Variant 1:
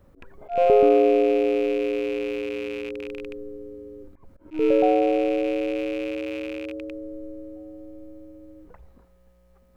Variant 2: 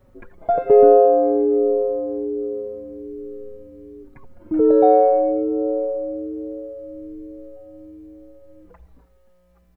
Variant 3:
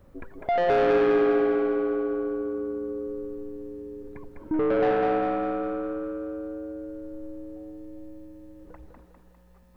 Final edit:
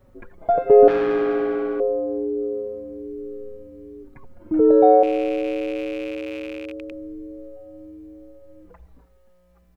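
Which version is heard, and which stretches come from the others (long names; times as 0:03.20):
2
0:00.88–0:01.80: punch in from 3
0:05.03–0:06.92: punch in from 1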